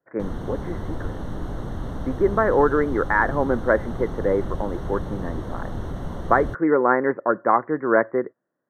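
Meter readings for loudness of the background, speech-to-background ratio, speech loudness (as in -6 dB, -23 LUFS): -33.0 LUFS, 10.5 dB, -22.5 LUFS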